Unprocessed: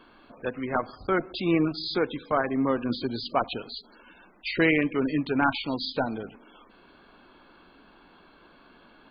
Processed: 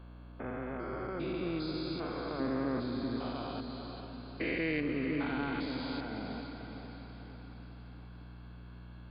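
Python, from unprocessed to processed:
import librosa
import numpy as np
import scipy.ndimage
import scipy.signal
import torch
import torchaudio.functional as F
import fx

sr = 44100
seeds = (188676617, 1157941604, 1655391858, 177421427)

y = fx.spec_steps(x, sr, hold_ms=400)
y = fx.add_hum(y, sr, base_hz=60, snr_db=11)
y = fx.echo_diffused(y, sr, ms=477, feedback_pct=51, wet_db=-7)
y = y * 10.0 ** (-5.5 / 20.0)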